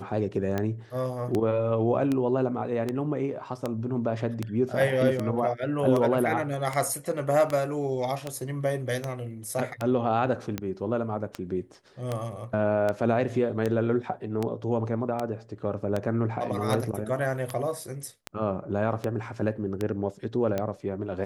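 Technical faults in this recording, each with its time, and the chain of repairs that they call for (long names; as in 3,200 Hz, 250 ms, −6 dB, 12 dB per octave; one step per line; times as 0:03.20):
scratch tick 78 rpm −15 dBFS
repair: click removal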